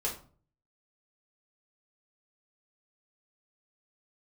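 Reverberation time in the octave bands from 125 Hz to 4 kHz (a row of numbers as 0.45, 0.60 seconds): 0.70, 0.55, 0.45, 0.40, 0.30, 0.30 seconds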